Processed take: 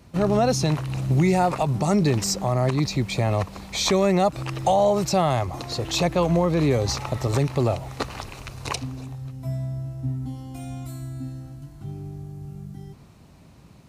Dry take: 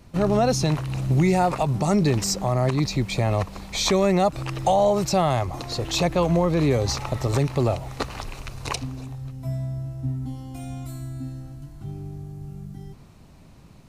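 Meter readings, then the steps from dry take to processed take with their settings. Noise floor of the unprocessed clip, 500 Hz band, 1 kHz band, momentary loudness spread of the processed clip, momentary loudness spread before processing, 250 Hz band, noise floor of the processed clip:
-49 dBFS, 0.0 dB, 0.0 dB, 16 LU, 16 LU, 0.0 dB, -50 dBFS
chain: high-pass 52 Hz

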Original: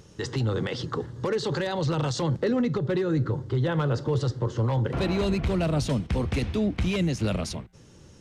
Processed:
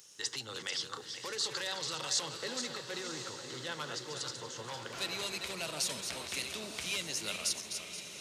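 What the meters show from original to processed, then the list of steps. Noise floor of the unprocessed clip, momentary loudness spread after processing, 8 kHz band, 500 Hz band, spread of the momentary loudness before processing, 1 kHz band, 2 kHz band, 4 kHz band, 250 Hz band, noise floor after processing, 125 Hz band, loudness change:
-52 dBFS, 7 LU, +6.5 dB, -16.0 dB, 5 LU, -9.5 dB, -3.5 dB, +2.5 dB, -22.0 dB, -48 dBFS, -27.0 dB, -9.5 dB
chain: backward echo that repeats 238 ms, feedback 48%, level -7 dB; differentiator; echo that smears into a reverb 1054 ms, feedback 42%, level -9.5 dB; trim +6 dB

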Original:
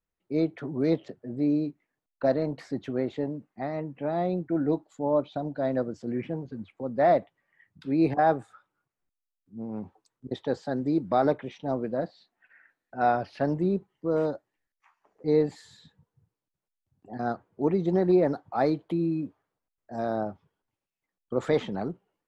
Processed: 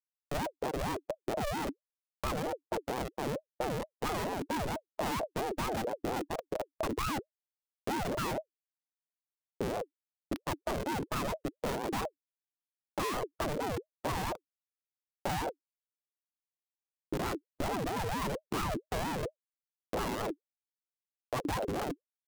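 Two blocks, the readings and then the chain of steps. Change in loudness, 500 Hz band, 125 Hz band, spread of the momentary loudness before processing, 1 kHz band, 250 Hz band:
-8.0 dB, -9.5 dB, -6.5 dB, 13 LU, -4.5 dB, -10.5 dB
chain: Schmitt trigger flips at -31.5 dBFS; reverb removal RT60 0.75 s; ring modulator with a swept carrier 460 Hz, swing 40%, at 4.4 Hz

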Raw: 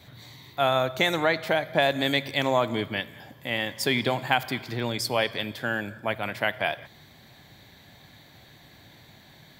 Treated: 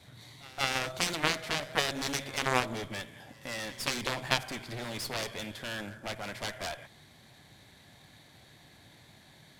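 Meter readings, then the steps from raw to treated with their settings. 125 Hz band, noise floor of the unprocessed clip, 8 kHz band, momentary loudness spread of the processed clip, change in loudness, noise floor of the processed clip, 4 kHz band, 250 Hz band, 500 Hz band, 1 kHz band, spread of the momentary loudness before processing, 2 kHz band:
-7.0 dB, -53 dBFS, +3.5 dB, 11 LU, -7.0 dB, -58 dBFS, -4.5 dB, -9.0 dB, -11.5 dB, -7.5 dB, 8 LU, -6.5 dB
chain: CVSD coder 64 kbps; in parallel at -3 dB: saturation -20.5 dBFS, distortion -12 dB; on the sum: Chebyshev shaper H 2 -15 dB, 3 -7 dB, 8 -27 dB, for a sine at -8 dBFS; pre-echo 177 ms -21 dB

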